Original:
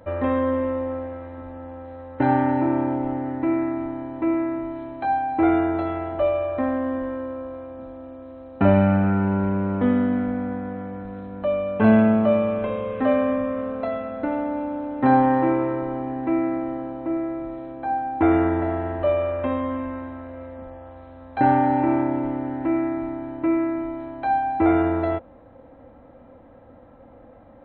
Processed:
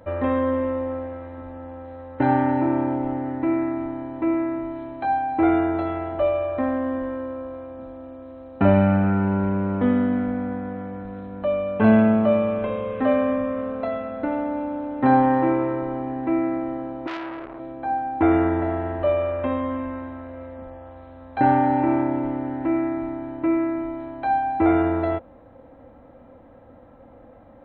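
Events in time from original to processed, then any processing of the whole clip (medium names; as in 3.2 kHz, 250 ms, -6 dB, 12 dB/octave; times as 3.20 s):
17.07–17.60 s: transformer saturation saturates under 1.8 kHz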